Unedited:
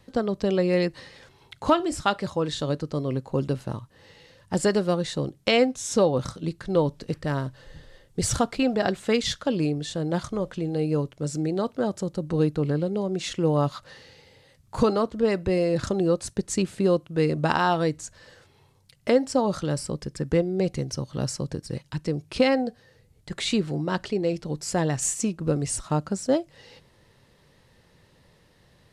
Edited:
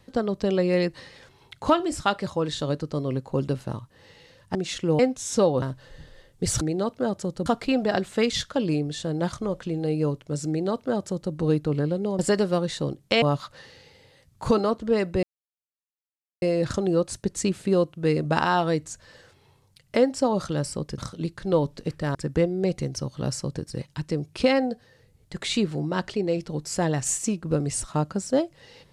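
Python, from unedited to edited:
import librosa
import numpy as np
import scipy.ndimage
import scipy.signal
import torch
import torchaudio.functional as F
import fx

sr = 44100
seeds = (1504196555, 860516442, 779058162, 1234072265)

y = fx.edit(x, sr, fx.swap(start_s=4.55, length_s=1.03, other_s=13.1, other_length_s=0.44),
    fx.move(start_s=6.21, length_s=1.17, to_s=20.11),
    fx.duplicate(start_s=11.39, length_s=0.85, to_s=8.37),
    fx.insert_silence(at_s=15.55, length_s=1.19), tone=tone)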